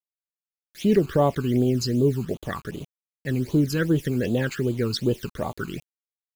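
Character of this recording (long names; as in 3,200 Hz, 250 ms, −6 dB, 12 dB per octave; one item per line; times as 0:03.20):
a quantiser's noise floor 8 bits, dither none
phaser sweep stages 12, 2.6 Hz, lowest notch 580–1,900 Hz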